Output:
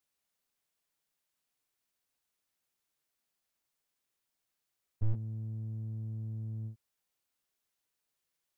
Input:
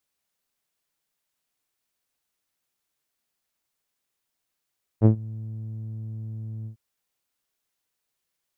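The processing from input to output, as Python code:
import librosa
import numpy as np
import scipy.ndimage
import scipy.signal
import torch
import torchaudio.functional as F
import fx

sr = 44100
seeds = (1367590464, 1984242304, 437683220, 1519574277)

y = fx.slew_limit(x, sr, full_power_hz=5.4)
y = F.gain(torch.from_numpy(y), -4.0).numpy()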